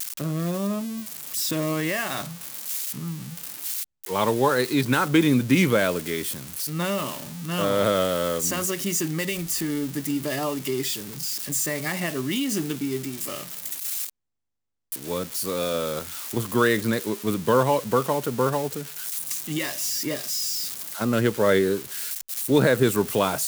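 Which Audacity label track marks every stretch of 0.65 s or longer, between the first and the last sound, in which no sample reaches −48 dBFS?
14.100000	14.920000	silence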